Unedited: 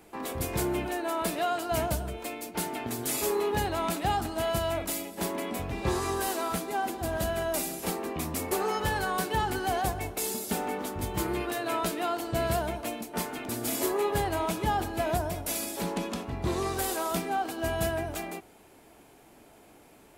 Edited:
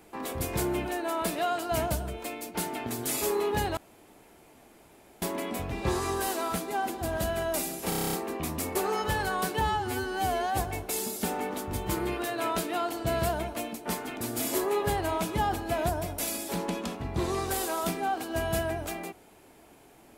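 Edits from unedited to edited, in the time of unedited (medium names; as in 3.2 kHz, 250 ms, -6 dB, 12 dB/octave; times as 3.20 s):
3.77–5.22 s: room tone
7.89 s: stutter 0.03 s, 9 plays
9.37–9.85 s: stretch 2×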